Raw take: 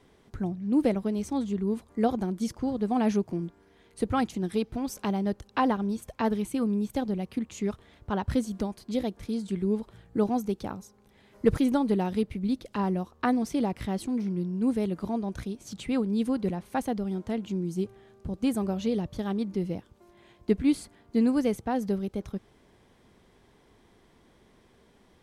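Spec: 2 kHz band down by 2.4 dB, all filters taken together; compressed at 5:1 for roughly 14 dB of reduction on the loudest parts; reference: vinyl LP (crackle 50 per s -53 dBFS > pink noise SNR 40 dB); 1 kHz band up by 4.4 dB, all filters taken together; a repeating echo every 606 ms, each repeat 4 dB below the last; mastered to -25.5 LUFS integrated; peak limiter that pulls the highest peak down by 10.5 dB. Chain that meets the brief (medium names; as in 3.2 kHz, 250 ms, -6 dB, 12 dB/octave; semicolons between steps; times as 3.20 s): peaking EQ 1 kHz +7 dB; peaking EQ 2 kHz -6 dB; compression 5:1, threshold -33 dBFS; peak limiter -30 dBFS; feedback delay 606 ms, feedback 63%, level -4 dB; crackle 50 per s -53 dBFS; pink noise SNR 40 dB; trim +13 dB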